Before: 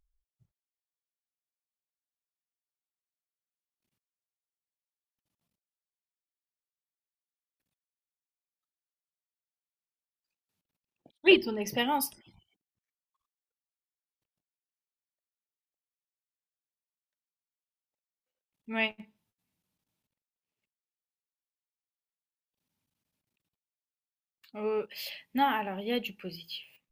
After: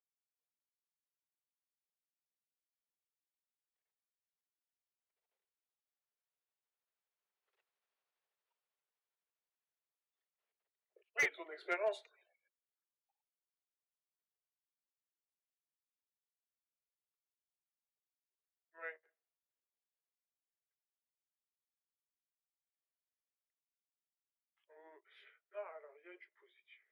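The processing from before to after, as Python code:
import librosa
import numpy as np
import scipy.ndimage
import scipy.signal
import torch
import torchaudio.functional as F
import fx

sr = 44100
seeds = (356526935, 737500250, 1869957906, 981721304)

y = fx.pitch_heads(x, sr, semitones=-5.0)
y = fx.doppler_pass(y, sr, speed_mps=6, closest_m=3.4, pass_at_s=7.98)
y = scipy.signal.sosfilt(scipy.signal.butter(16, 370.0, 'highpass', fs=sr, output='sos'), y)
y = fx.air_absorb(y, sr, metres=300.0)
y = np.clip(y, -10.0 ** (-39.5 / 20.0), 10.0 ** (-39.5 / 20.0))
y = F.gain(torch.from_numpy(y), 12.5).numpy()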